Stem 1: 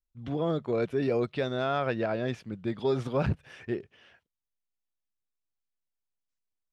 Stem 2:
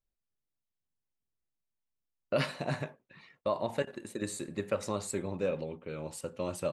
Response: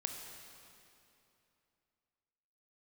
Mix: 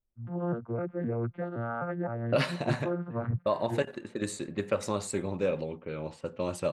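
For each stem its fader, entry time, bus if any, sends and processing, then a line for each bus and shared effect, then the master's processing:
−3.5 dB, 0.00 s, no send, vocoder with an arpeggio as carrier bare fifth, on A#2, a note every 258 ms; low-pass with resonance 1,400 Hz, resonance Q 2.5
+3.0 dB, 0.00 s, no send, low-pass that shuts in the quiet parts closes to 680 Hz, open at −31 dBFS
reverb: not used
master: highs frequency-modulated by the lows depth 0.13 ms

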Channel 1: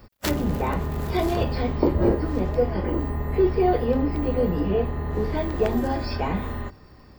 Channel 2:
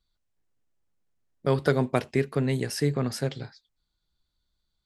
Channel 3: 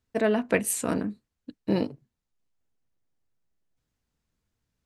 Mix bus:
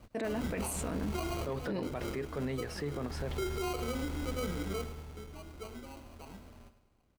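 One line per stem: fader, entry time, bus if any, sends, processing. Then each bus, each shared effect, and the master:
0:01.08 −6.5 dB → 0:01.63 −19.5 dB → 0:02.89 −19.5 dB → 0:03.24 −12 dB → 0:04.57 −12 dB → 0:05.28 −23.5 dB, 0.00 s, no send, echo send −12.5 dB, decimation without filtering 25×
−7.0 dB, 0.00 s, no send, no echo send, mid-hump overdrive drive 13 dB, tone 1,200 Hz, clips at −13 dBFS
0.0 dB, 0.00 s, no send, no echo send, no processing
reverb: not used
echo: repeating echo 104 ms, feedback 46%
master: brickwall limiter −27.5 dBFS, peak gain reduction 19 dB

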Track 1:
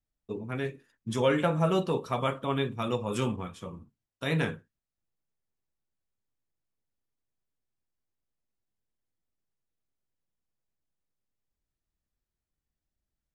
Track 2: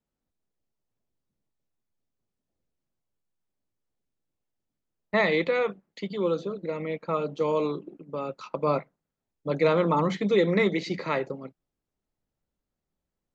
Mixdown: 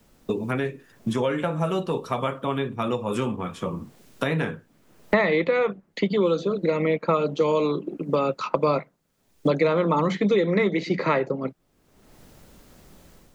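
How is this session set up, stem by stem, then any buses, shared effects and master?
−10.5 dB, 0.00 s, no send, no processing
−2.5 dB, 0.00 s, no send, parametric band 810 Hz −2 dB 0.25 octaves; automatic gain control gain up to 8 dB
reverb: not used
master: multiband upward and downward compressor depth 100%

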